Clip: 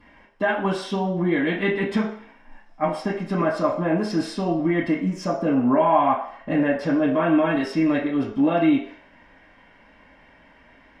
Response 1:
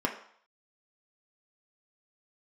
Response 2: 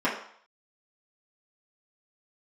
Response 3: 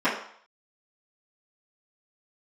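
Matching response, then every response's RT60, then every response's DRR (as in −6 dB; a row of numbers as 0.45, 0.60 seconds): 2; 0.60, 0.60, 0.60 seconds; 0.5, −9.0, −14.0 decibels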